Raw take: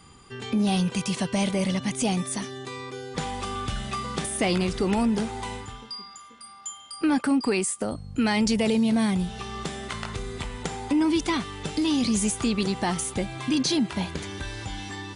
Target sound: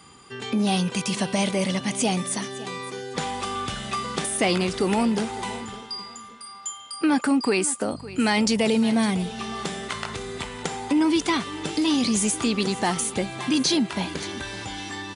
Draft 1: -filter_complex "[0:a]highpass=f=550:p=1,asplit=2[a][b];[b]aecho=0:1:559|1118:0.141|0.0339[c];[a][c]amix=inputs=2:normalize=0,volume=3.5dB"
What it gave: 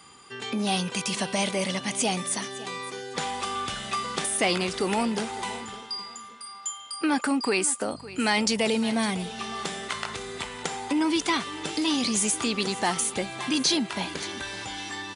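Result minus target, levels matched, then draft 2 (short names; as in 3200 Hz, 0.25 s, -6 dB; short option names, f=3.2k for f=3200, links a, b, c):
250 Hz band -2.5 dB
-filter_complex "[0:a]highpass=f=220:p=1,asplit=2[a][b];[b]aecho=0:1:559|1118:0.141|0.0339[c];[a][c]amix=inputs=2:normalize=0,volume=3.5dB"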